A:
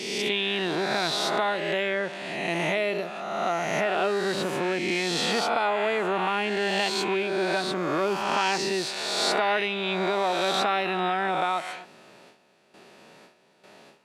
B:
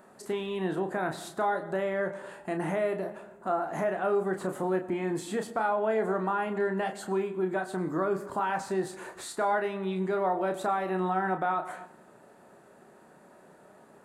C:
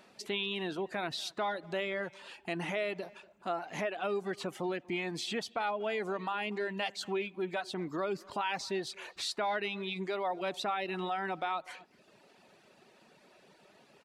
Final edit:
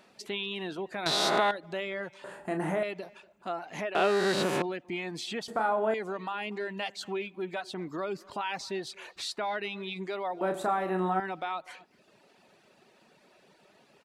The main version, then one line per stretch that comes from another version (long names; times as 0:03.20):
C
0:01.06–0:01.51: punch in from A
0:02.24–0:02.83: punch in from B
0:03.95–0:04.62: punch in from A
0:05.48–0:05.94: punch in from B
0:10.41–0:11.20: punch in from B